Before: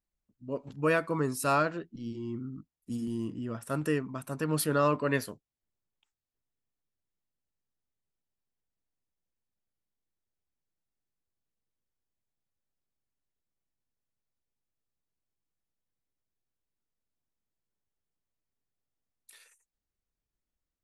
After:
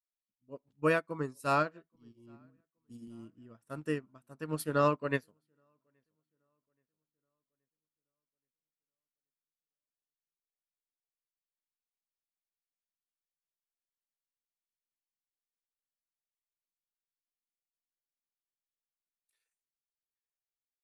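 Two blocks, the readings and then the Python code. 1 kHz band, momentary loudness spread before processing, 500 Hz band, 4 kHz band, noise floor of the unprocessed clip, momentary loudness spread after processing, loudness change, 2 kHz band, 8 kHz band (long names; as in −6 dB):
−2.0 dB, 13 LU, −3.0 dB, −5.5 dB, below −85 dBFS, 23 LU, −1.0 dB, −3.0 dB, −11.0 dB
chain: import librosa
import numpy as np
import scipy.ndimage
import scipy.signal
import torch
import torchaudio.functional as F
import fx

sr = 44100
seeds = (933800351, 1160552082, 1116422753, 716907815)

p1 = x + fx.echo_filtered(x, sr, ms=826, feedback_pct=42, hz=3100.0, wet_db=-19, dry=0)
y = fx.upward_expand(p1, sr, threshold_db=-42.0, expansion=2.5)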